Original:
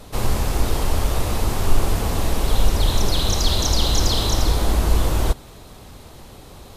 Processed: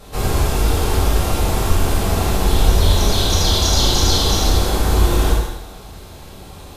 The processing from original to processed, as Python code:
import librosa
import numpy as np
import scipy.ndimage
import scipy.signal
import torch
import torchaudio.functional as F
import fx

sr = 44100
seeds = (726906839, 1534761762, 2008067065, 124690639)

p1 = fx.doubler(x, sr, ms=37.0, db=-11)
p2 = p1 + fx.echo_feedback(p1, sr, ms=80, feedback_pct=60, wet_db=-12.0, dry=0)
p3 = fx.rev_gated(p2, sr, seeds[0], gate_ms=280, shape='falling', drr_db=-4.5)
y = p3 * librosa.db_to_amplitude(-2.0)